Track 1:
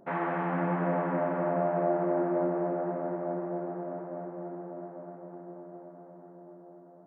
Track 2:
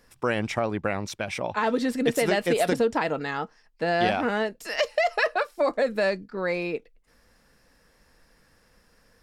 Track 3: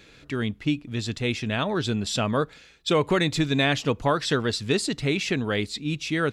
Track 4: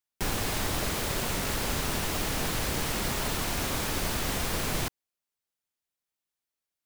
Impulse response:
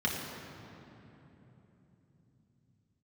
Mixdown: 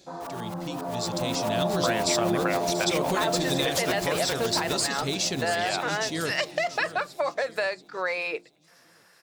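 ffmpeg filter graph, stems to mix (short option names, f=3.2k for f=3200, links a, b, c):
-filter_complex "[0:a]lowpass=f=1.2k:w=0.5412,lowpass=f=1.2k:w=1.3066,asplit=2[a][b];[b]adelay=3.3,afreqshift=-1.7[c];[a][c]amix=inputs=2:normalize=1,volume=-0.5dB,asplit=2[d][e];[e]volume=-10dB[f];[1:a]highpass=680,adelay=1600,volume=-2dB[g];[2:a]highshelf=f=3.5k:t=q:w=1.5:g=12.5,volume=-11.5dB,asplit=2[h][i];[i]volume=-17dB[j];[3:a]highpass=100,aeval=exprs='val(0)*pow(10,-23*if(lt(mod(-7.4*n/s,1),2*abs(-7.4)/1000),1-mod(-7.4*n/s,1)/(2*abs(-7.4)/1000),(mod(-7.4*n/s,1)-2*abs(-7.4)/1000)/(1-2*abs(-7.4)/1000))/20)':c=same,volume=-9dB,asplit=2[k][l];[l]volume=-7.5dB[m];[d][k]amix=inputs=2:normalize=0,alimiter=level_in=3dB:limit=-24dB:level=0:latency=1:release=169,volume=-3dB,volume=0dB[n];[g][h]amix=inputs=2:normalize=0,bandreject=f=50:t=h:w=6,bandreject=f=100:t=h:w=6,bandreject=f=150:t=h:w=6,bandreject=f=200:t=h:w=6,bandreject=f=250:t=h:w=6,bandreject=f=300:t=h:w=6,bandreject=f=350:t=h:w=6,acompressor=threshold=-32dB:ratio=5,volume=0dB[o];[f][j][m]amix=inputs=3:normalize=0,aecho=0:1:683|1366|2049|2732|3415|4098:1|0.45|0.202|0.0911|0.041|0.0185[p];[n][o][p]amix=inputs=3:normalize=0,dynaudnorm=f=490:g=5:m=8dB"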